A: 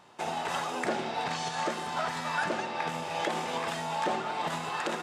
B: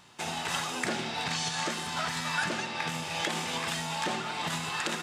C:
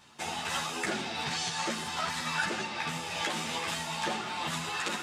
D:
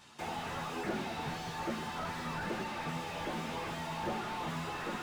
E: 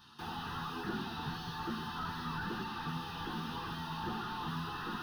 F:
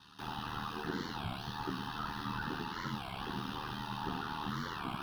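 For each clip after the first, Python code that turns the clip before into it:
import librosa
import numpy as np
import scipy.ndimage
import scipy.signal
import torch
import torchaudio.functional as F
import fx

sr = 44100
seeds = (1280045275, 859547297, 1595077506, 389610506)

y1 = fx.peak_eq(x, sr, hz=600.0, db=-13.0, octaves=2.7)
y1 = y1 * librosa.db_to_amplitude(7.5)
y2 = fx.ensemble(y1, sr)
y2 = y2 * librosa.db_to_amplitude(2.0)
y3 = fx.slew_limit(y2, sr, full_power_hz=18.0)
y4 = fx.fixed_phaser(y3, sr, hz=2200.0, stages=6)
y4 = y4 * librosa.db_to_amplitude(1.5)
y5 = y4 * np.sin(2.0 * np.pi * 38.0 * np.arange(len(y4)) / sr)
y5 = fx.record_warp(y5, sr, rpm=33.33, depth_cents=250.0)
y5 = y5 * librosa.db_to_amplitude(3.0)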